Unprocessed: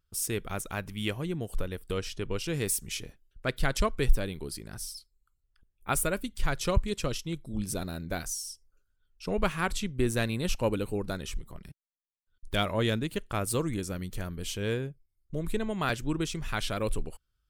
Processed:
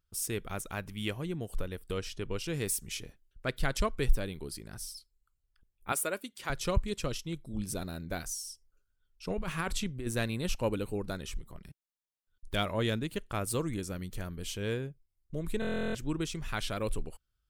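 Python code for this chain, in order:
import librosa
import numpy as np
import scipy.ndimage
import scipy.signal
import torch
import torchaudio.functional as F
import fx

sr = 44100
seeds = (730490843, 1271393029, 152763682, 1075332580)

y = fx.highpass(x, sr, hz=310.0, slope=12, at=(5.92, 6.5))
y = fx.over_compress(y, sr, threshold_db=-30.0, ratio=-1.0, at=(9.3, 10.07))
y = fx.buffer_glitch(y, sr, at_s=(15.6,), block=1024, repeats=14)
y = y * librosa.db_to_amplitude(-3.0)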